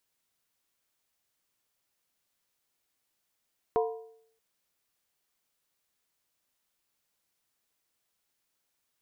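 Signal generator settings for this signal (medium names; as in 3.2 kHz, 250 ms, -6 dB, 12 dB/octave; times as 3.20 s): skin hit, lowest mode 448 Hz, modes 4, decay 0.68 s, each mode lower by 4.5 dB, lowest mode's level -22 dB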